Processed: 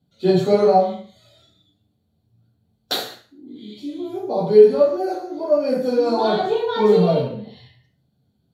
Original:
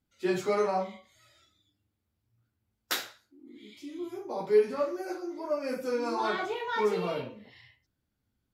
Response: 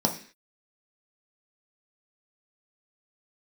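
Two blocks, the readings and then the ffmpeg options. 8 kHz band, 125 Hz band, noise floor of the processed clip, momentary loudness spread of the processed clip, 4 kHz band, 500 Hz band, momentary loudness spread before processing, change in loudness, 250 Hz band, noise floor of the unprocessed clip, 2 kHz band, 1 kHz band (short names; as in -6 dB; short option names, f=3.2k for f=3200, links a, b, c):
n/a, +18.5 dB, -68 dBFS, 17 LU, +10.0 dB, +13.0 dB, 15 LU, +12.5 dB, +13.0 dB, -82 dBFS, +1.5 dB, +10.5 dB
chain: -filter_complex "[0:a]bandreject=f=60:t=h:w=6,bandreject=f=120:t=h:w=6[a];[1:a]atrim=start_sample=2205,afade=t=out:st=0.21:d=0.01,atrim=end_sample=9702,asetrate=33516,aresample=44100[b];[a][b]afir=irnorm=-1:irlink=0,volume=-4dB"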